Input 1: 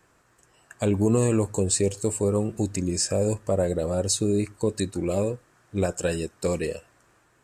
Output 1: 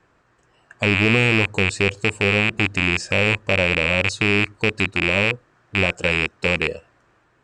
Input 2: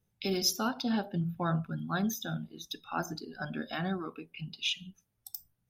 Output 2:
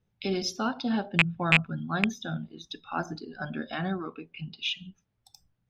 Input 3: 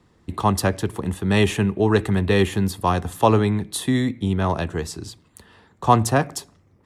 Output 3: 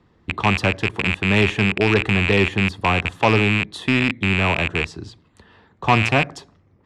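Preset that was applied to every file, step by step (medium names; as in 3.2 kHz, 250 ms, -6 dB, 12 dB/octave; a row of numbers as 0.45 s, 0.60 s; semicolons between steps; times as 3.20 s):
rattle on loud lows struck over -28 dBFS, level -6 dBFS; low-pass 4 kHz 12 dB/octave; saturation -6 dBFS; peak normalisation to -6 dBFS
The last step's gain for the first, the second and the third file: +2.0 dB, +2.5 dB, +0.5 dB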